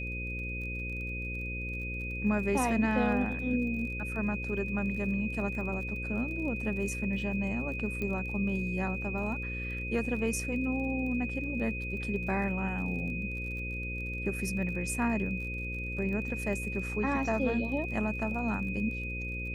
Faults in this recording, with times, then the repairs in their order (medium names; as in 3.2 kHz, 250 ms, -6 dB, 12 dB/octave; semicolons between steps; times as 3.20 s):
buzz 60 Hz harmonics 9 -38 dBFS
crackle 33 per s -41 dBFS
whine 2.5 kHz -37 dBFS
8.02 s: pop -23 dBFS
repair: de-click; de-hum 60 Hz, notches 9; band-stop 2.5 kHz, Q 30